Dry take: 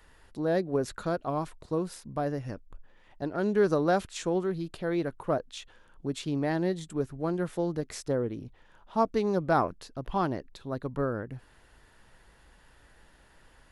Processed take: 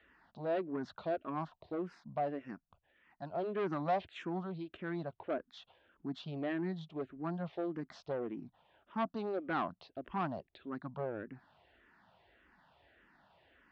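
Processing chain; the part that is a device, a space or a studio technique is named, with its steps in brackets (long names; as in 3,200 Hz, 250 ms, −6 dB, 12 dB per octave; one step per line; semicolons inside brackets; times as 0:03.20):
barber-pole phaser into a guitar amplifier (frequency shifter mixed with the dry sound −1.7 Hz; soft clipping −26.5 dBFS, distortion −12 dB; loudspeaker in its box 110–3,700 Hz, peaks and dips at 120 Hz −7 dB, 470 Hz −6 dB, 690 Hz +6 dB)
0:02.55–0:03.33: parametric band 380 Hz −5.5 dB 2.2 octaves
level −2.5 dB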